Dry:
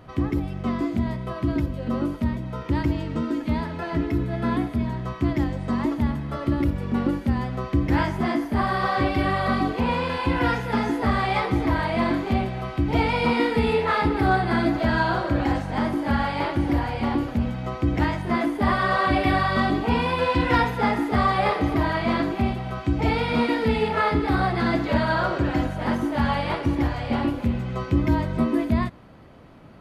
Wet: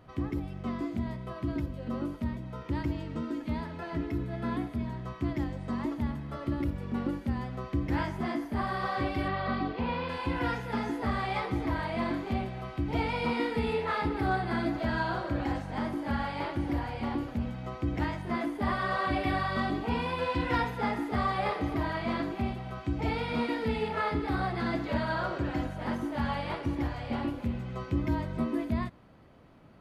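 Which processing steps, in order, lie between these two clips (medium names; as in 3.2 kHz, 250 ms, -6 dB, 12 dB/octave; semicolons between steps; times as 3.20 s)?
9.28–10.09 s: low-pass 4.8 kHz 24 dB/octave; trim -8.5 dB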